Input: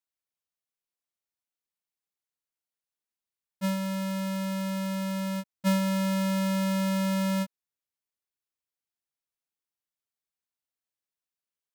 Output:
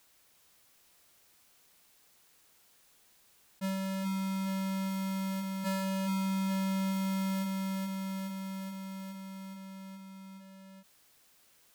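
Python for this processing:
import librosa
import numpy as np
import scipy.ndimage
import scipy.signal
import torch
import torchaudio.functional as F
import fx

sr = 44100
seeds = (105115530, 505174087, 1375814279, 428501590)

y = fx.echo_feedback(x, sr, ms=421, feedback_pct=57, wet_db=-4.5)
y = fx.env_flatten(y, sr, amount_pct=50)
y = y * librosa.db_to_amplitude(-8.0)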